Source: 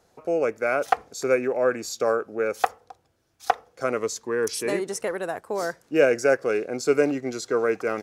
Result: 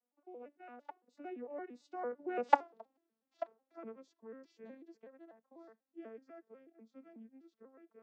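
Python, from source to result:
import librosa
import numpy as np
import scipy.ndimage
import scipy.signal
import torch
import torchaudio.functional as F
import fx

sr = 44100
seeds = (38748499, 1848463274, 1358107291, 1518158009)

y = fx.vocoder_arp(x, sr, chord='minor triad', root=58, every_ms=118)
y = fx.doppler_pass(y, sr, speed_mps=15, closest_m=1.2, pass_at_s=2.6)
y = scipy.signal.sosfilt(scipy.signal.butter(2, 4200.0, 'lowpass', fs=sr, output='sos'), y)
y = y * 10.0 ** (1.5 / 20.0)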